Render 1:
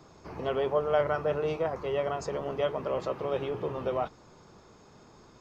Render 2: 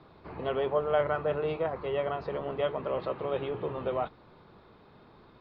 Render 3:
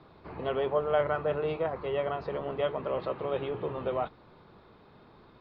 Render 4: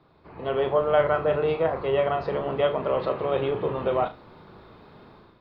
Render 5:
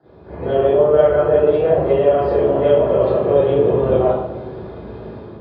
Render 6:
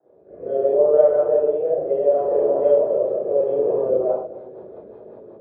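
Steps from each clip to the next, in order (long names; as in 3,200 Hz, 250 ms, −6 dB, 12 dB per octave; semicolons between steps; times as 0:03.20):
elliptic low-pass filter 4,100 Hz, stop band 50 dB
no processing that can be heard
automatic gain control gain up to 11.5 dB; flutter between parallel walls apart 6.3 metres, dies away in 0.24 s; level −5 dB
downward compressor 2 to 1, threshold −33 dBFS, peak gain reduction 10 dB; convolution reverb RT60 1.2 s, pre-delay 30 ms, DRR −12 dB; level −12 dB
resonant band-pass 550 Hz, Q 2.3; rotating-speaker cabinet horn 0.7 Hz, later 5.5 Hz, at 0:03.58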